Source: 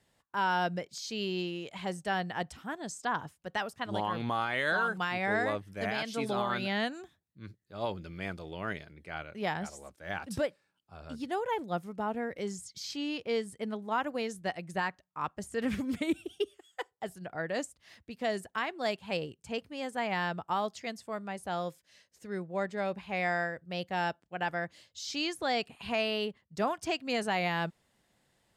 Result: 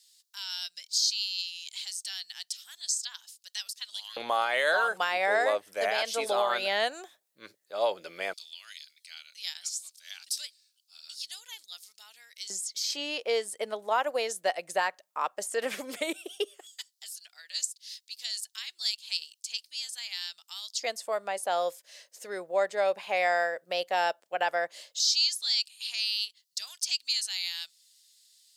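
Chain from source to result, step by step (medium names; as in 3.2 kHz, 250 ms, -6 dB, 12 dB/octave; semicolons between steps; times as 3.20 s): treble shelf 3.1 kHz +12 dB; in parallel at 0 dB: compression, threshold -37 dBFS, peak gain reduction 13 dB; on the sum: LFO high-pass square 0.12 Hz 560–4400 Hz; trim -2.5 dB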